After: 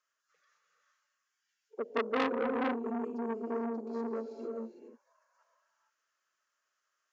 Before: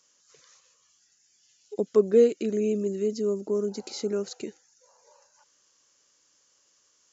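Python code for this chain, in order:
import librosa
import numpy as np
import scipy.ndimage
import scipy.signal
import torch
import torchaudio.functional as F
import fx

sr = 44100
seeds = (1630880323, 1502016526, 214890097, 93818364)

y = fx.low_shelf(x, sr, hz=380.0, db=4.0)
y = fx.auto_wah(y, sr, base_hz=490.0, top_hz=1500.0, q=2.2, full_db=-27.5, direction='down')
y = fx.pitch_keep_formants(y, sr, semitones=2.0)
y = fx.rev_gated(y, sr, seeds[0], gate_ms=480, shape='rising', drr_db=1.5)
y = fx.transformer_sat(y, sr, knee_hz=1800.0)
y = y * librosa.db_to_amplitude(-5.0)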